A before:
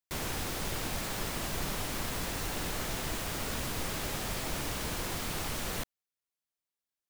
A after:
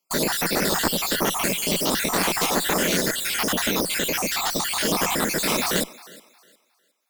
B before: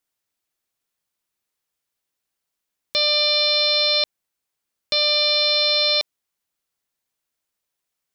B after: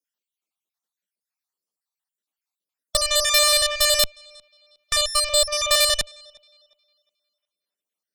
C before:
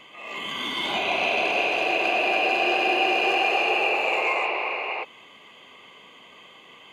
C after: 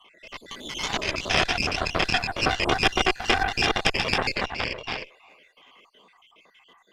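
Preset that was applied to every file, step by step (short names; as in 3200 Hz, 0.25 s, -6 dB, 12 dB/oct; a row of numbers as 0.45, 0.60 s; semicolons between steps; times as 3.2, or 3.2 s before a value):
random spectral dropouts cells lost 55%; elliptic high-pass 170 Hz; thinning echo 0.36 s, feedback 28%, high-pass 270 Hz, level -20 dB; added harmonics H 3 -28 dB, 4 -6 dB, 7 -25 dB, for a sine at -10 dBFS; normalise peaks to -3 dBFS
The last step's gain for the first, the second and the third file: +23.5, +2.5, +3.0 dB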